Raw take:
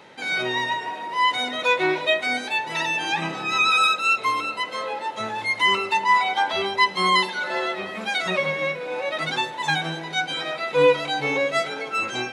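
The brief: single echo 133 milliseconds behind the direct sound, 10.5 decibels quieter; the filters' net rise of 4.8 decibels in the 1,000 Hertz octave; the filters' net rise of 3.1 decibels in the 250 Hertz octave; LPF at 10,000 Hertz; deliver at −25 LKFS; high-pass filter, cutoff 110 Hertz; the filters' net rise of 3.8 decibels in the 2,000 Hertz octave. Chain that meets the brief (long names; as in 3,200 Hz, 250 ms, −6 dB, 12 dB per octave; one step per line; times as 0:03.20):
high-pass filter 110 Hz
low-pass filter 10,000 Hz
parametric band 250 Hz +4.5 dB
parametric band 1,000 Hz +4.5 dB
parametric band 2,000 Hz +3.5 dB
single-tap delay 133 ms −10.5 dB
level −6.5 dB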